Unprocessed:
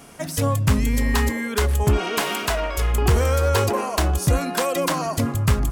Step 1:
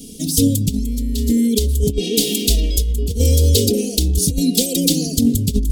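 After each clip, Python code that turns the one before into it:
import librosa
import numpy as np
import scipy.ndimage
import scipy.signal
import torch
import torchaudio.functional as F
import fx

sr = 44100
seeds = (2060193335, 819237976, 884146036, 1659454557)

y = scipy.signal.sosfilt(scipy.signal.cheby1(3, 1.0, [380.0, 3600.0], 'bandstop', fs=sr, output='sos'), x)
y = y + 0.76 * np.pad(y, (int(4.2 * sr / 1000.0), 0))[:len(y)]
y = fx.over_compress(y, sr, threshold_db=-21.0, ratio=-0.5)
y = y * librosa.db_to_amplitude(7.0)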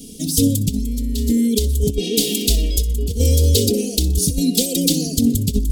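y = fx.echo_wet_highpass(x, sr, ms=62, feedback_pct=44, hz=4500.0, wet_db=-15.0)
y = y * librosa.db_to_amplitude(-1.0)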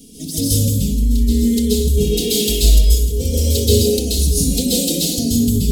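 y = fx.rev_plate(x, sr, seeds[0], rt60_s=0.71, hf_ratio=0.95, predelay_ms=120, drr_db=-6.0)
y = y * librosa.db_to_amplitude(-5.5)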